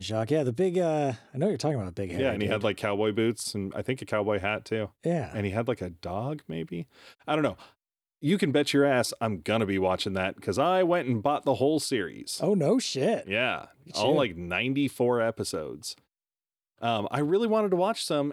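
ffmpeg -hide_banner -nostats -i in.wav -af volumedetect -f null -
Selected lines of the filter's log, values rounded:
mean_volume: -27.8 dB
max_volume: -11.7 dB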